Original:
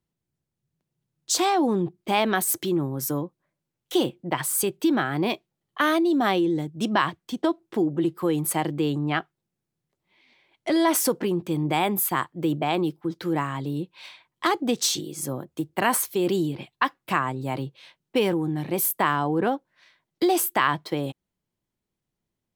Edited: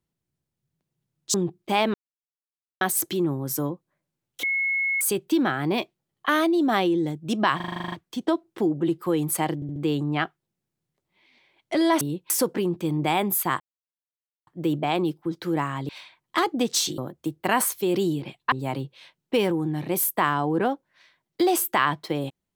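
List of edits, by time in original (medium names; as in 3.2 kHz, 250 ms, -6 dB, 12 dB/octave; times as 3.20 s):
1.34–1.73 s: delete
2.33 s: insert silence 0.87 s
3.95–4.53 s: bleep 2.18 kHz -21.5 dBFS
7.08 s: stutter 0.04 s, 10 plays
8.71 s: stutter 0.07 s, 4 plays
12.26 s: insert silence 0.87 s
13.68–13.97 s: move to 10.96 s
15.06–15.31 s: delete
16.85–17.34 s: delete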